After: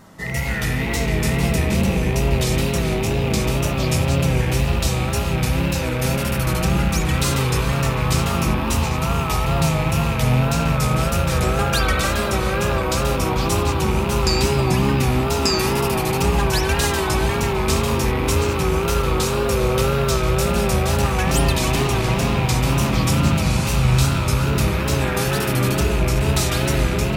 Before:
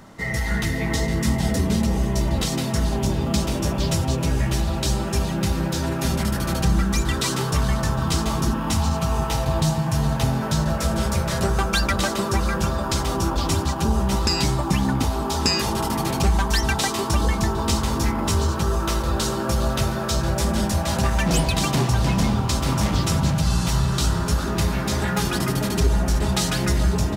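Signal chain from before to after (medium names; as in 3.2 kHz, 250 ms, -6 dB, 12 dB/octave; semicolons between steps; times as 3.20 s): rattle on loud lows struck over -25 dBFS, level -20 dBFS; treble shelf 10 kHz +10 dB; spring tank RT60 3.4 s, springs 38/60 ms, chirp 40 ms, DRR -1 dB; wow and flutter 79 cents; trim -1.5 dB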